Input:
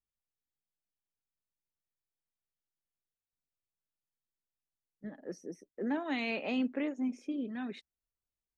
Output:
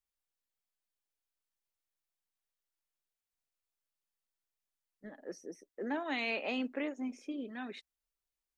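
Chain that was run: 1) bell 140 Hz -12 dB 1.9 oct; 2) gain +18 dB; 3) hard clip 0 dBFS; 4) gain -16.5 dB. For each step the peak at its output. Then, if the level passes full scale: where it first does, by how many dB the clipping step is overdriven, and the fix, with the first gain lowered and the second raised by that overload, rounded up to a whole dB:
-24.0, -6.0, -6.0, -22.5 dBFS; no overload

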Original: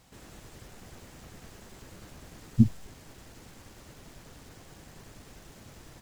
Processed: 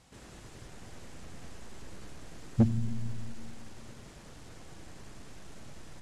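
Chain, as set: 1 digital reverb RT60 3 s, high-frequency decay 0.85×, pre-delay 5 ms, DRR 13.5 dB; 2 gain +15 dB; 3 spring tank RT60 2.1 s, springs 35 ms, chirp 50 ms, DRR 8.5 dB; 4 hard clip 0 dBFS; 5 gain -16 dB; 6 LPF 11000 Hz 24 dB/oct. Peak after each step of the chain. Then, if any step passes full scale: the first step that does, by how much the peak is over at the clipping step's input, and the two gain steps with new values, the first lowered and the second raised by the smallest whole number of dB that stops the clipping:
-6.5, +8.5, +8.5, 0.0, -16.0, -16.0 dBFS; step 2, 8.5 dB; step 2 +6 dB, step 5 -7 dB

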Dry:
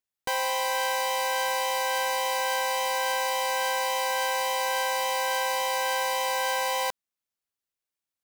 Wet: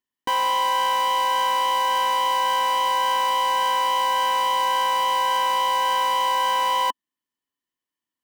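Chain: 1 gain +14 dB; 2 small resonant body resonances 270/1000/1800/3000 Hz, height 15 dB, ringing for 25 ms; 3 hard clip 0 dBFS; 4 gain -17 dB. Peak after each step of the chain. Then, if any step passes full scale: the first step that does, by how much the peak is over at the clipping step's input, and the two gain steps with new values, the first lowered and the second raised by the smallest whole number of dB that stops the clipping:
-3.5, +4.0, 0.0, -17.0 dBFS; step 2, 4.0 dB; step 1 +10 dB, step 4 -13 dB

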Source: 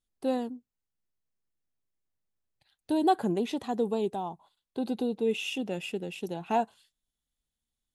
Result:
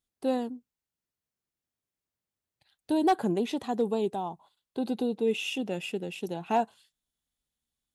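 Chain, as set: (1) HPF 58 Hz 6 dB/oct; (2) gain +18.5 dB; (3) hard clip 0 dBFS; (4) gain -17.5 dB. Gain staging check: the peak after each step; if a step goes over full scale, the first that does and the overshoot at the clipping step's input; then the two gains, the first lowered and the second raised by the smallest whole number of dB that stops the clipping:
-14.5, +4.0, 0.0, -17.5 dBFS; step 2, 4.0 dB; step 2 +14.5 dB, step 4 -13.5 dB

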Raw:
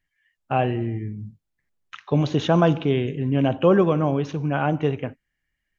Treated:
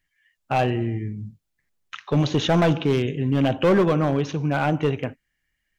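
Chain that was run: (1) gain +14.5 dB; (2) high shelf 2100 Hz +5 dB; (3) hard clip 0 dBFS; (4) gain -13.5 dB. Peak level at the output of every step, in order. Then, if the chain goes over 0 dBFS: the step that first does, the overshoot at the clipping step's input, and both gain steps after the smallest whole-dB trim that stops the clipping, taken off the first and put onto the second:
+9.0, +9.5, 0.0, -13.5 dBFS; step 1, 9.5 dB; step 1 +4.5 dB, step 4 -3.5 dB

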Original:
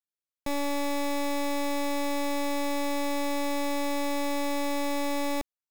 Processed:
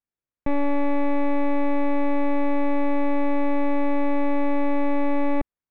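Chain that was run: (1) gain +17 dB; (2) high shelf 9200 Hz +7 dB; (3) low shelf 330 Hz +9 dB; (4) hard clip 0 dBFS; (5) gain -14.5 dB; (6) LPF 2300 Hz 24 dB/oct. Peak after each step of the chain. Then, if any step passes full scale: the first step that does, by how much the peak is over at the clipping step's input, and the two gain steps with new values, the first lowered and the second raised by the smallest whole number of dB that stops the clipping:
-11.0, -4.0, -2.0, -2.0, -16.5, -16.5 dBFS; no overload

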